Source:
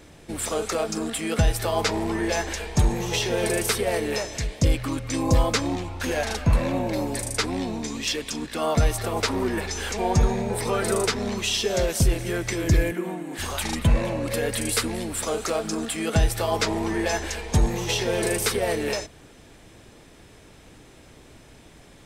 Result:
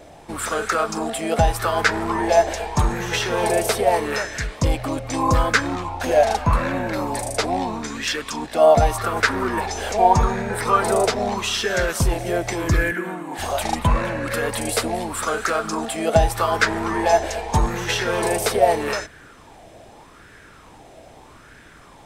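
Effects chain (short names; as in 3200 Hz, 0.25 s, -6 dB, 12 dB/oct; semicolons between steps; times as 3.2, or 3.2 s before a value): LFO bell 0.81 Hz 650–1600 Hz +16 dB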